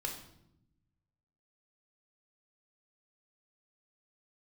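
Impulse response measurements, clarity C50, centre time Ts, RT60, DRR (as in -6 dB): 7.5 dB, 24 ms, 0.80 s, 1.5 dB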